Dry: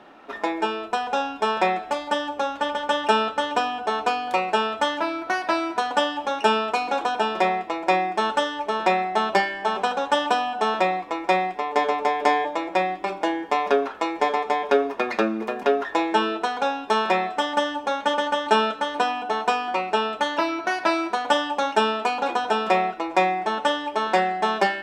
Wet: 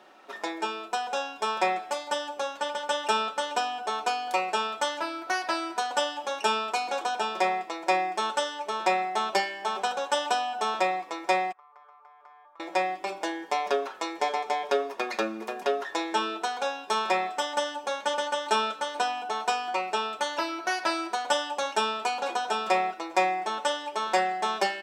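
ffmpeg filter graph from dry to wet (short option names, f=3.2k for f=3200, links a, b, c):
-filter_complex "[0:a]asettb=1/sr,asplit=3[a][b][c];[a]atrim=end=11.524[d];[b]atrim=start=11.52:end=12.6,asetpts=PTS-STARTPTS,afade=t=in:d=0.004:c=qsin,afade=t=out:st=1.076:d=0.004:c=qsin,bandpass=f=1.2k:t=q:w=13,acompressor=threshold=-46dB:ratio=2.5:attack=3.2:release=140:knee=1:detection=peak[e];[c]atrim=start=12.596[f];[d][e]acrossfade=d=0.004:c1=hsin:c2=qsin[g];[g][f]acrossfade=d=0.004:c1=qsin:c2=hsin,bass=f=250:g=-11,treble=f=4k:g=10,aecho=1:1:5.4:0.31,volume=-6dB"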